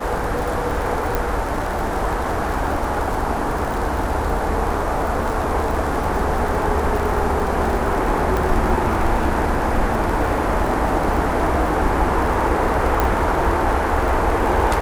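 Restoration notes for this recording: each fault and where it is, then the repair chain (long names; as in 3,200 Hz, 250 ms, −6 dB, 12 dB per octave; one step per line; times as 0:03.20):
surface crackle 59 per second −24 dBFS
0:01.15: click
0:08.37: click
0:13.00: click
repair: click removal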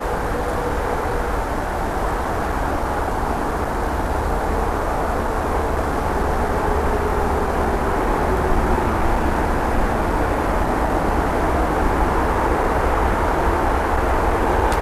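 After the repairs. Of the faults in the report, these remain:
0:08.37: click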